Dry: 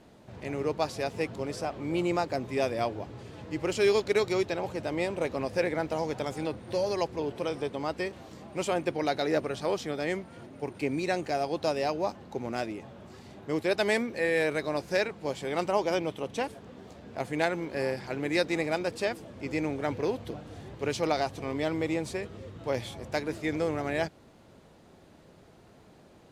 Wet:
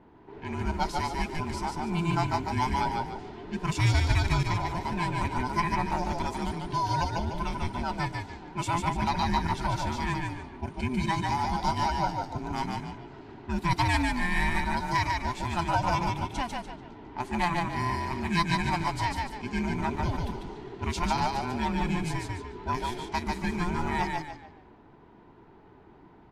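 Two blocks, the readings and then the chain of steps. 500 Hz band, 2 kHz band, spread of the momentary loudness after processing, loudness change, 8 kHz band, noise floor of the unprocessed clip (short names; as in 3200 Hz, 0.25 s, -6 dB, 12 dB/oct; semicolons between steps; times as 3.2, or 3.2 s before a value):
-9.0 dB, +2.0 dB, 10 LU, +1.0 dB, +2.0 dB, -56 dBFS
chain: band inversion scrambler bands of 500 Hz; frequency-shifting echo 0.146 s, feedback 36%, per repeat -34 Hz, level -3 dB; low-pass opened by the level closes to 1700 Hz, open at -28.5 dBFS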